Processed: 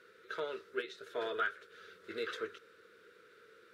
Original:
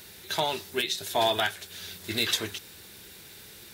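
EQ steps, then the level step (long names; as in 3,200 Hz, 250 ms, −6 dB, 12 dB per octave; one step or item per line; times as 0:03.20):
pair of resonant band-passes 800 Hz, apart 1.5 octaves
+2.5 dB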